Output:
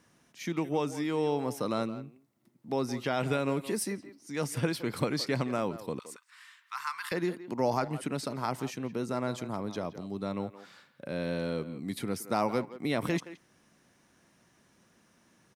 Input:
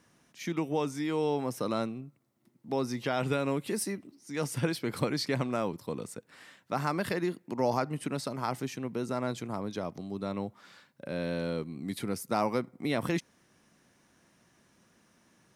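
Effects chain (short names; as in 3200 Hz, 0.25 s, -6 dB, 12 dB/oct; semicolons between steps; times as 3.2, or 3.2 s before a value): 5.99–7.12 elliptic high-pass 1000 Hz, stop band 40 dB; speakerphone echo 0.17 s, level -13 dB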